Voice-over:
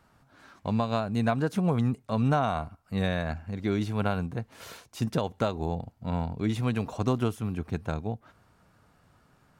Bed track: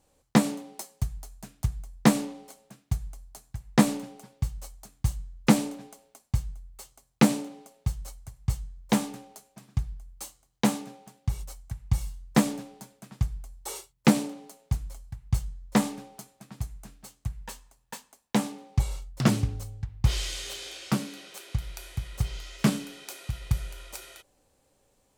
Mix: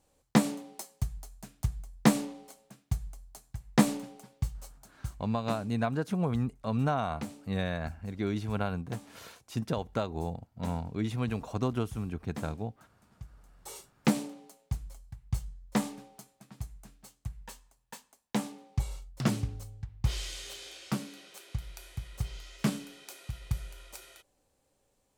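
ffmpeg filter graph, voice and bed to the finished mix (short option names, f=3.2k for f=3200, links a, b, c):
-filter_complex "[0:a]adelay=4550,volume=-4dB[a];[1:a]volume=10.5dB,afade=t=out:st=4.45:d=0.82:silence=0.149624,afade=t=in:st=13.38:d=0.43:silence=0.211349[b];[a][b]amix=inputs=2:normalize=0"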